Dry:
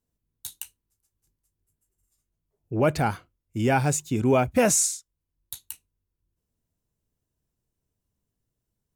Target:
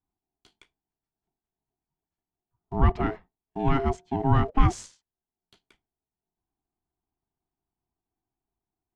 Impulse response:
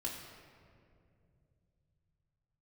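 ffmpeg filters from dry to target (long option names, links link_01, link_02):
-filter_complex "[0:a]acrossover=split=140[link_01][link_02];[link_01]aeval=exprs='val(0)*gte(abs(val(0)),0.00668)':channel_layout=same[link_03];[link_02]adynamicsmooth=sensitivity=1.5:basefreq=2900[link_04];[link_03][link_04]amix=inputs=2:normalize=0,afreqshift=15,aeval=exprs='val(0)*sin(2*PI*540*n/s)':channel_layout=same,aemphasis=mode=reproduction:type=bsi,volume=-2.5dB"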